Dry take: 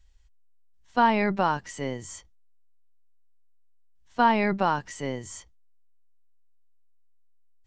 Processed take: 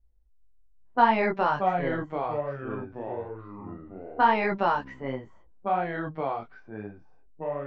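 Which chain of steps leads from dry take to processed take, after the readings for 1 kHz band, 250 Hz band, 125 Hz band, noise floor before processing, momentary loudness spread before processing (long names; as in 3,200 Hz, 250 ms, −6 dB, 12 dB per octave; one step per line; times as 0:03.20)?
+1.5 dB, −2.5 dB, 0.0 dB, −57 dBFS, 20 LU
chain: low-pass that shuts in the quiet parts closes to 410 Hz, open at −20 dBFS
multi-voice chorus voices 4, 1 Hz, delay 19 ms, depth 4.5 ms
bass and treble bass −7 dB, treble −9 dB
delay with pitch and tempo change per echo 375 ms, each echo −4 semitones, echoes 3, each echo −6 dB
level +3.5 dB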